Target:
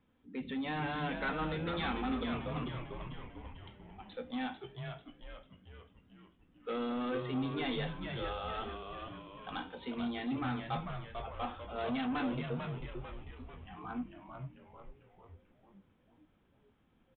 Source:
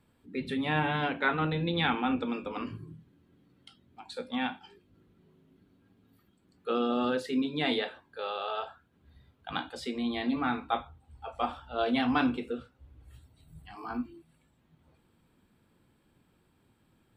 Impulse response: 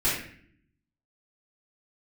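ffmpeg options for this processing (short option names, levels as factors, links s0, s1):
-filter_complex "[0:a]aecho=1:1:3.9:0.34,aresample=8000,asoftclip=type=tanh:threshold=0.0501,aresample=44100,asplit=8[s0][s1][s2][s3][s4][s5][s6][s7];[s1]adelay=445,afreqshift=-110,volume=0.531[s8];[s2]adelay=890,afreqshift=-220,volume=0.285[s9];[s3]adelay=1335,afreqshift=-330,volume=0.155[s10];[s4]adelay=1780,afreqshift=-440,volume=0.0832[s11];[s5]adelay=2225,afreqshift=-550,volume=0.0452[s12];[s6]adelay=2670,afreqshift=-660,volume=0.0243[s13];[s7]adelay=3115,afreqshift=-770,volume=0.0132[s14];[s0][s8][s9][s10][s11][s12][s13][s14]amix=inputs=8:normalize=0,volume=0.562"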